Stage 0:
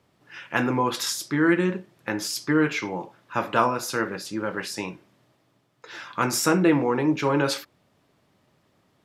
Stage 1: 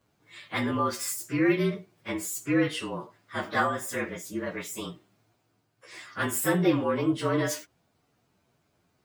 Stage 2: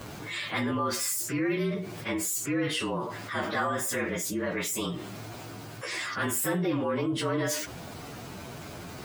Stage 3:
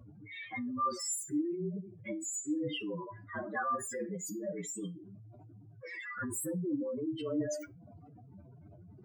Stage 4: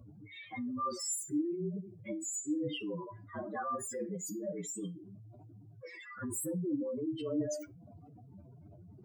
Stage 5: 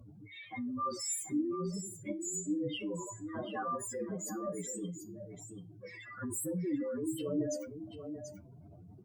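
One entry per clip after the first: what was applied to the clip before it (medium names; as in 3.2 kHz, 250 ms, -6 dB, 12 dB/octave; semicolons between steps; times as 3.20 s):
frequency axis rescaled in octaves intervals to 112%; treble shelf 9.1 kHz +4 dB; trim -2 dB
level flattener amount 70%; trim -7.5 dB
spectral contrast enhancement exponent 3.6; feedback comb 99 Hz, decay 0.22 s, harmonics all, mix 60%; upward expansion 1.5:1, over -46 dBFS; trim +1 dB
peaking EQ 1.7 kHz -9.5 dB 0.82 oct
on a send: delay 735 ms -9.5 dB; on the sum: Opus 96 kbps 48 kHz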